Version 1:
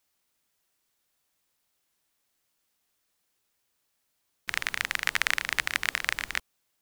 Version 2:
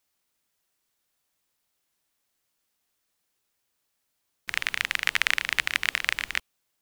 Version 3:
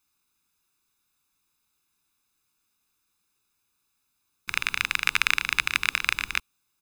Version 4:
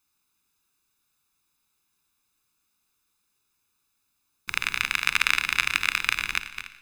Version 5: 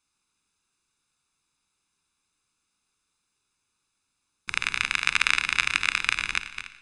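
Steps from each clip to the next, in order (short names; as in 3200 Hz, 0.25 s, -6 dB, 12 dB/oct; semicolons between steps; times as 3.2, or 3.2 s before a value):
dynamic EQ 2800 Hz, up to +6 dB, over -40 dBFS, Q 1.3; gain -1 dB
comb 0.8 ms, depth 73%
regenerating reverse delay 0.144 s, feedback 44%, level -9 dB; Schroeder reverb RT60 1.9 s, combs from 30 ms, DRR 17 dB
downsampling 22050 Hz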